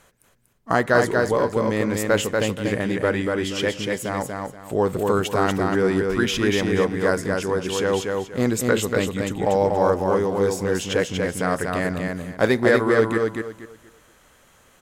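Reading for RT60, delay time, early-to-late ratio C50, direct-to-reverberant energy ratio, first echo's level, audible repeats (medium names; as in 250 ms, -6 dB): no reverb, 239 ms, no reverb, no reverb, -3.5 dB, 3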